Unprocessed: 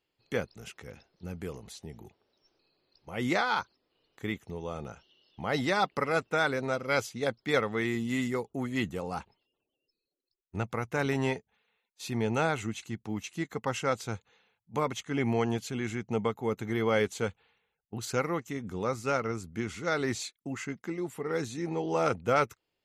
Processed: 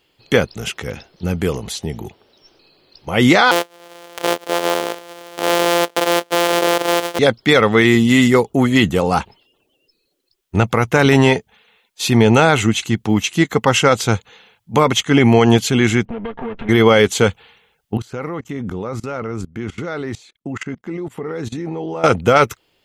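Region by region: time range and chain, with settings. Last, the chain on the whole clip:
3.51–7.19 s: sorted samples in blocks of 256 samples + resonant high-pass 470 Hz, resonance Q 1.9 + upward compressor, threshold -41 dBFS
16.05–16.69 s: comb filter that takes the minimum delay 4.3 ms + low-pass 2.8 kHz 24 dB/octave + compression 12:1, threshold -41 dBFS
17.97–22.04 s: treble shelf 2.7 kHz -11.5 dB + level held to a coarse grid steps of 22 dB
whole clip: peaking EQ 3.2 kHz +5 dB 0.32 oct; loudness maximiser +20 dB; trim -1 dB

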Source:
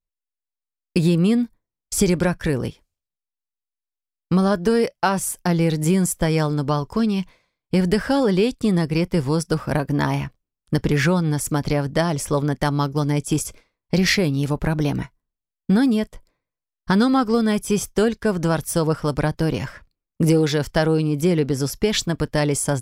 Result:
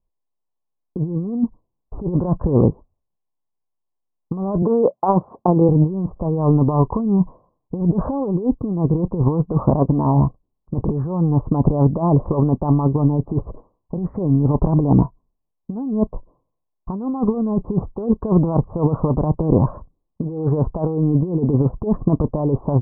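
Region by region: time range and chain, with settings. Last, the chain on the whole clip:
4.62–5.69 s: high-pass 210 Hz + compressor with a negative ratio -22 dBFS, ratio -0.5
whole clip: compressor with a negative ratio -23 dBFS, ratio -0.5; Chebyshev low-pass 1.1 kHz, order 6; trim +8 dB

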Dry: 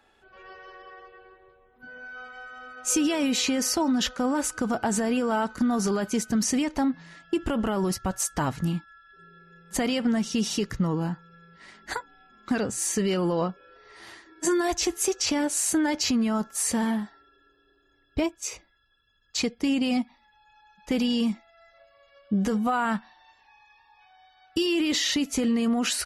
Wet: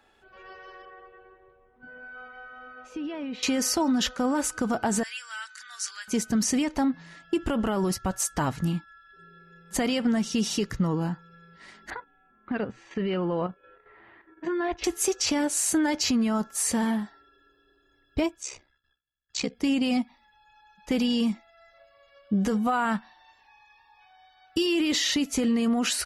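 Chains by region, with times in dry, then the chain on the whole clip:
0.85–3.43 s: compression 3:1, threshold -32 dBFS + distance through air 340 m
5.03–6.08 s: elliptic band-pass 1.6–9.2 kHz, stop band 80 dB + treble shelf 5.7 kHz +5.5 dB
11.90–14.84 s: level-controlled noise filter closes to 1.6 kHz, open at -25.5 dBFS + low-pass 3.1 kHz 24 dB/octave + level held to a coarse grid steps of 9 dB
18.42–19.55 s: steep low-pass 9.2 kHz 48 dB/octave + gate with hold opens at -58 dBFS, closes at -60 dBFS + ring modulator 33 Hz
whole clip: none

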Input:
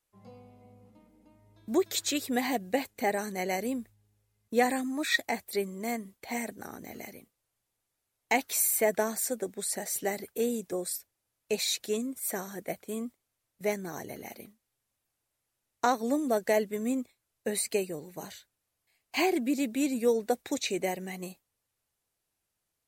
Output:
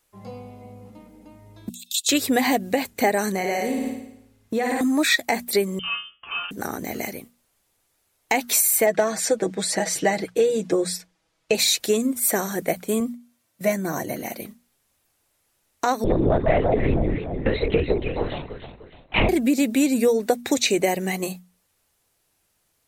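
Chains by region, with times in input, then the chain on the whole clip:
1.69–2.09 s: rippled Chebyshev high-pass 2.6 kHz, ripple 6 dB + level held to a coarse grid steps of 9 dB
3.35–4.81 s: flutter echo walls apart 9.5 m, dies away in 0.77 s + compression 5:1, threshold -34 dBFS + treble shelf 6.4 kHz -6.5 dB
5.79–6.51 s: feedback comb 90 Hz, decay 0.32 s, mix 90% + frequency inversion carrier 3.3 kHz
8.86–11.55 s: low-pass 5.4 kHz + comb 6.2 ms + hard clipper -16 dBFS
13.00–14.42 s: high-pass 100 Hz + dynamic bell 4 kHz, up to -4 dB, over -51 dBFS, Q 0.88 + comb of notches 420 Hz
16.04–19.29 s: echo whose repeats swap between lows and highs 152 ms, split 1.1 kHz, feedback 60%, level -4 dB + LPC vocoder at 8 kHz whisper
whole clip: hum notches 60/120/180/240 Hz; compression 4:1, threshold -30 dBFS; loudness maximiser +19.5 dB; trim -6 dB

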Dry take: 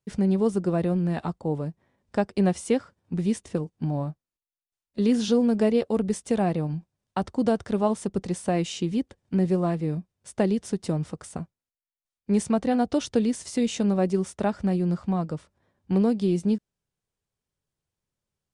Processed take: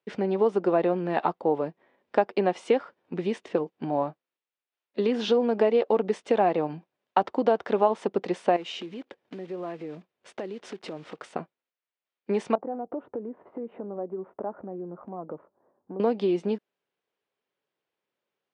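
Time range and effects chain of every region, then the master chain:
8.56–11.25 s: block-companded coder 5-bit + compression 8:1, threshold -34 dBFS
12.55–16.00 s: low-pass 1.1 kHz 24 dB/octave + compression 5:1, threshold -34 dBFS
whole clip: dynamic bell 860 Hz, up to +6 dB, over -40 dBFS, Q 1.8; compression, threshold -22 dBFS; Chebyshev band-pass 380–2900 Hz, order 2; trim +6.5 dB

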